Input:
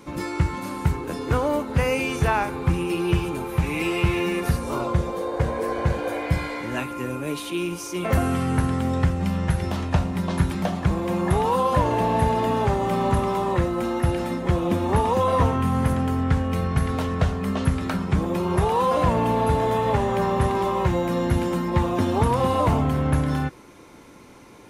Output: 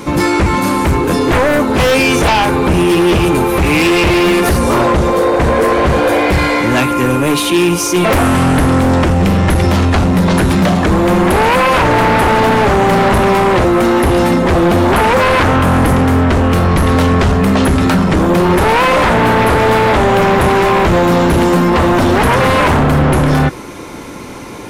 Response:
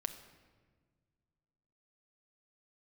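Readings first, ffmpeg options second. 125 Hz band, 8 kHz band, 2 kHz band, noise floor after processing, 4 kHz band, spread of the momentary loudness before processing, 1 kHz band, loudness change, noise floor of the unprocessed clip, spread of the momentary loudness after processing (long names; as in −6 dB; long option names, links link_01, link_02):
+9.5 dB, +15.5 dB, +17.0 dB, −26 dBFS, +16.5 dB, 5 LU, +12.5 dB, +12.5 dB, −45 dBFS, 2 LU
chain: -filter_complex "[0:a]asplit=2[link_01][link_02];[link_02]alimiter=limit=-18.5dB:level=0:latency=1,volume=0dB[link_03];[link_01][link_03]amix=inputs=2:normalize=0,aeval=exprs='0.447*sin(PI/2*2.82*val(0)/0.447)':channel_layout=same"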